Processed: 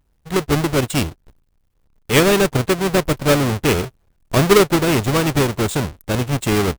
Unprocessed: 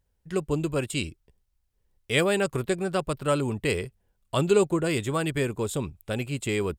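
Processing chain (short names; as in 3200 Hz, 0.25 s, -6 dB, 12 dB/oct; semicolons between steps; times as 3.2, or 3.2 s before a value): half-waves squared off; harmoniser -4 st -16 dB; gain +4.5 dB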